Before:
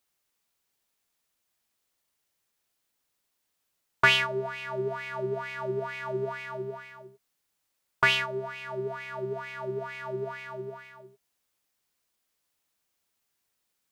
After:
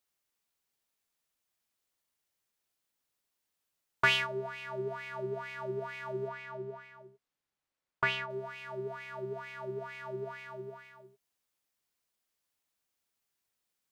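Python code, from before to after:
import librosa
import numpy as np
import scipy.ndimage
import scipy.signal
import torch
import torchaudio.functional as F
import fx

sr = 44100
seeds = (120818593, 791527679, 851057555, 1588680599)

y = fx.lowpass(x, sr, hz=fx.line((6.27, 3900.0), (8.29, 2000.0)), slope=6, at=(6.27, 8.29), fade=0.02)
y = F.gain(torch.from_numpy(y), -5.5).numpy()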